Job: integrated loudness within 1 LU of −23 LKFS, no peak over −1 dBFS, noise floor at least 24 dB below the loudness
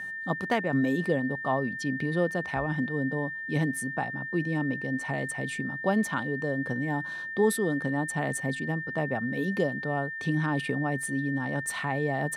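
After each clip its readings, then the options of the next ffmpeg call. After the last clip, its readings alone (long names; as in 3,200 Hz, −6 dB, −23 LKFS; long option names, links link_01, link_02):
interfering tone 1,800 Hz; level of the tone −34 dBFS; integrated loudness −29.0 LKFS; sample peak −13.0 dBFS; target loudness −23.0 LKFS
→ -af "bandreject=frequency=1800:width=30"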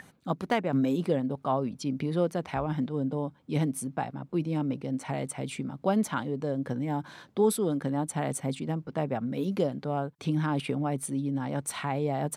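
interfering tone none found; integrated loudness −30.5 LKFS; sample peak −13.5 dBFS; target loudness −23.0 LKFS
→ -af "volume=7.5dB"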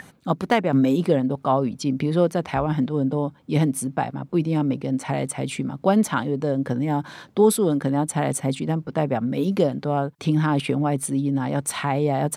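integrated loudness −23.0 LKFS; sample peak −6.0 dBFS; background noise floor −52 dBFS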